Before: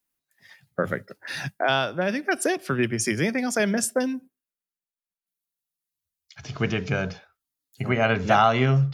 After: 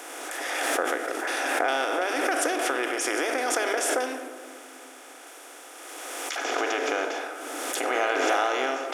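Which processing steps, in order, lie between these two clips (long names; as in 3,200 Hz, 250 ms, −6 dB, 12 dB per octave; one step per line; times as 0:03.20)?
compressor on every frequency bin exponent 0.4
downward compressor 1.5 to 1, threshold −39 dBFS, peak gain reduction 10.5 dB
linear-phase brick-wall high-pass 270 Hz
on a send at −7 dB: convolution reverb RT60 2.1 s, pre-delay 4 ms
on the sum: background raised ahead of every attack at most 23 dB per second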